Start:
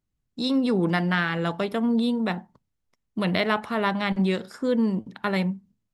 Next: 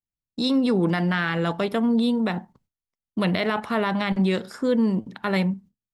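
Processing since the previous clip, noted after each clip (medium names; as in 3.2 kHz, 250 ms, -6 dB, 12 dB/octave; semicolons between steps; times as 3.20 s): gate with hold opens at -42 dBFS; in parallel at 0 dB: level held to a coarse grid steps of 17 dB; on the sum: peak limiter -12.5 dBFS, peak gain reduction 5.5 dB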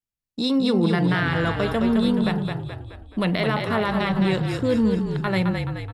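wow and flutter 21 cents; frequency-shifting echo 213 ms, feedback 51%, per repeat -38 Hz, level -5 dB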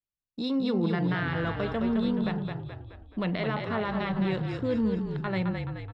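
distance through air 140 m; trim -6.5 dB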